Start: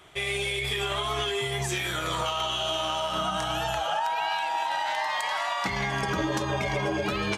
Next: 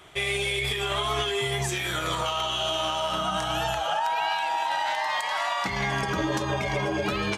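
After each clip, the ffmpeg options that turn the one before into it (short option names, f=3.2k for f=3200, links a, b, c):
-af "alimiter=limit=-19dB:level=0:latency=1:release=266,volume=2.5dB"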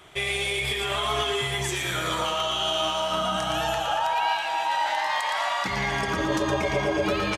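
-af "aecho=1:1:116|232|348|464|580|696:0.501|0.236|0.111|0.052|0.0245|0.0115"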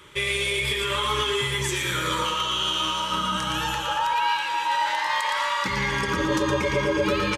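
-af "asuperstop=centerf=710:order=12:qfactor=3.2,volume=2dB"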